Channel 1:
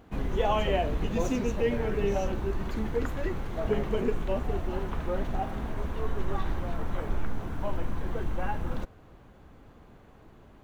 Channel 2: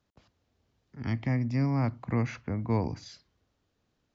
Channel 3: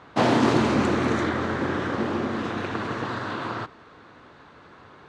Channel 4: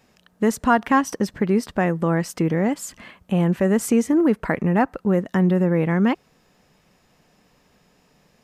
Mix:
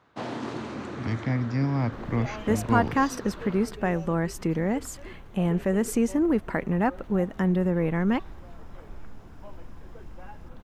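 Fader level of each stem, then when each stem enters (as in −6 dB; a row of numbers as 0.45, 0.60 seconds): −12.5, +1.5, −14.0, −5.5 decibels; 1.80, 0.00, 0.00, 2.05 seconds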